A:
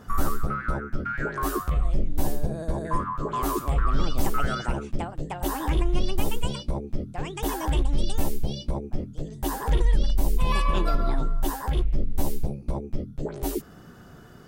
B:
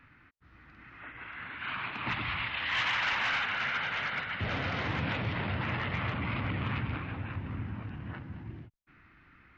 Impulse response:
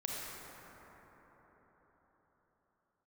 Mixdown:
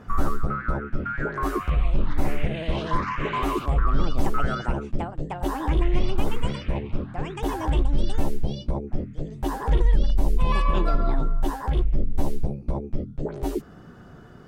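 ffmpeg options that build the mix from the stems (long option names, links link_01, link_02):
-filter_complex "[0:a]aemphasis=mode=reproduction:type=75fm,volume=1dB[link_01];[1:a]asplit=2[link_02][link_03];[link_03]afreqshift=1.2[link_04];[link_02][link_04]amix=inputs=2:normalize=1,volume=-4dB,asplit=3[link_05][link_06][link_07];[link_05]atrim=end=3.66,asetpts=PTS-STARTPTS,afade=type=out:start_time=3.656:duration=0.004:curve=hsin[link_08];[link_06]atrim=start=3.66:end=5.82,asetpts=PTS-STARTPTS,volume=0[link_09];[link_07]atrim=start=5.82,asetpts=PTS-STARTPTS,afade=type=in:duration=0.004:curve=hsin[link_10];[link_08][link_09][link_10]concat=n=3:v=0:a=1[link_11];[link_01][link_11]amix=inputs=2:normalize=0,highshelf=frequency=8300:gain=5"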